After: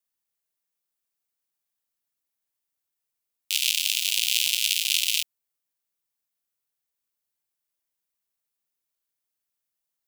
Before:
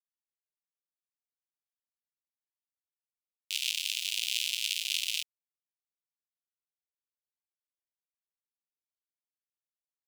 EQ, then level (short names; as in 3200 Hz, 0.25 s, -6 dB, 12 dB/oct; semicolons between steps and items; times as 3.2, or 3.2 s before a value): high shelf 9200 Hz +9 dB; +6.5 dB